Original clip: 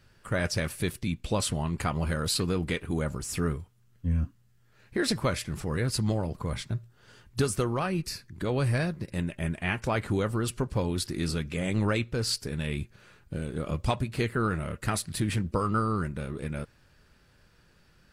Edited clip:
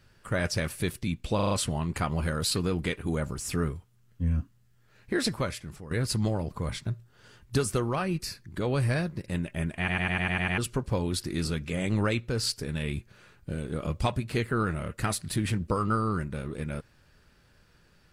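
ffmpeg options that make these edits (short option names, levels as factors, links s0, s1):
-filter_complex "[0:a]asplit=14[s0][s1][s2][s3][s4][s5][s6][s7][s8][s9][s10][s11][s12][s13];[s0]atrim=end=1.392[s14];[s1]atrim=start=1.348:end=1.392[s15];[s2]atrim=start=1.348:end=1.392[s16];[s3]atrim=start=1.348:end=1.392[s17];[s4]atrim=start=1.348:end=5.75,asetpts=PTS-STARTPTS,afade=t=out:st=3.682:d=0.72:silence=0.188365[s18];[s5]atrim=start=5.75:end=9.722,asetpts=PTS-STARTPTS,afade=t=in:d=0.004:c=hsin:silence=0.188365[s19];[s6]atrim=start=9.618:end=9.722[s20];[s7]atrim=start=9.618:end=9.722[s21];[s8]atrim=start=9.618:end=9.722[s22];[s9]atrim=start=9.618:end=9.722[s23];[s10]atrim=start=9.618:end=9.722[s24];[s11]atrim=start=9.618:end=9.722[s25];[s12]atrim=start=9.618:end=9.722[s26];[s13]atrim=start=10.418[s27];[s14][s15]acrossfade=d=0.004:c1=hsin:c2=hsin[s28];[s28][s16]acrossfade=d=0.004:c1=hsin:c2=hsin[s29];[s29][s17]acrossfade=d=0.004:c1=hsin:c2=hsin[s30];[s18][s19]concat=n=2:v=0:a=1[s31];[s30][s31]acrossfade=d=0.004:c1=hsin:c2=hsin[s32];[s32][s20]acrossfade=d=0.004:c1=hsin:c2=hsin[s33];[s33][s21]acrossfade=d=0.004:c1=hsin:c2=hsin[s34];[s34][s22]acrossfade=d=0.004:c1=hsin:c2=hsin[s35];[s35][s23]acrossfade=d=0.004:c1=hsin:c2=hsin[s36];[s36][s24]acrossfade=d=0.004:c1=hsin:c2=hsin[s37];[s37][s25]acrossfade=d=0.004:c1=hsin:c2=hsin[s38];[s38][s26]acrossfade=d=0.004:c1=hsin:c2=hsin[s39];[s39][s27]acrossfade=d=0.004:c1=hsin:c2=hsin"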